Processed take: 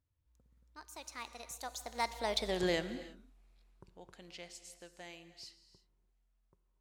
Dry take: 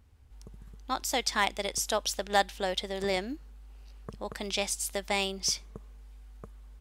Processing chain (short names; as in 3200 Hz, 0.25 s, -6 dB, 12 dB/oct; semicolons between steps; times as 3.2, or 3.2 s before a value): Doppler pass-by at 2.5, 52 m/s, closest 9.6 m; non-linear reverb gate 0.36 s flat, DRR 11.5 dB